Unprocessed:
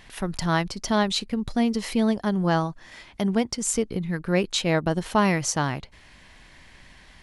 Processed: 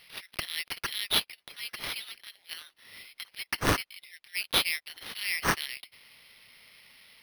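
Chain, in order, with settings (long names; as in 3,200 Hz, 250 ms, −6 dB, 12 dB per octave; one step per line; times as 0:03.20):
Butterworth high-pass 2,000 Hz 72 dB per octave
transient designer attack −3 dB, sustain +3 dB
in parallel at −4.5 dB: dead-zone distortion −37.5 dBFS
on the sum: bad sample-rate conversion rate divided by 6×, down none, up hold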